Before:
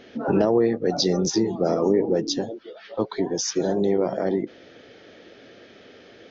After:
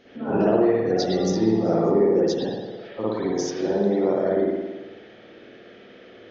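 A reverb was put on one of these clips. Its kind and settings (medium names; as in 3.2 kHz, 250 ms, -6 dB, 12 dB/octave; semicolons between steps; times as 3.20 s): spring tank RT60 1.2 s, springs 54 ms, chirp 70 ms, DRR -8.5 dB; trim -8 dB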